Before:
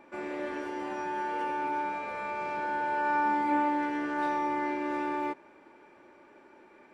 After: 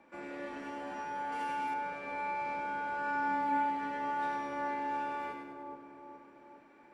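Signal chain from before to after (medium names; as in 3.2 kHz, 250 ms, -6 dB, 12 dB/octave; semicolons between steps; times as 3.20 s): peaking EQ 380 Hz -3 dB 0.36 oct; two-band feedback delay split 1.1 kHz, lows 423 ms, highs 100 ms, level -4.5 dB; frequency shift -15 Hz; 1.32–1.74 s: treble shelf 4 kHz +11.5 dB; trim -6 dB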